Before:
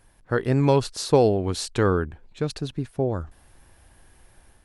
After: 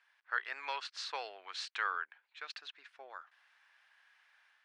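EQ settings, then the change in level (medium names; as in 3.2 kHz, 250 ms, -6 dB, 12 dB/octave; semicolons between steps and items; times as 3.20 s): ladder high-pass 1.2 kHz, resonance 20%; distance through air 150 m; treble shelf 4.8 kHz -8.5 dB; +4.5 dB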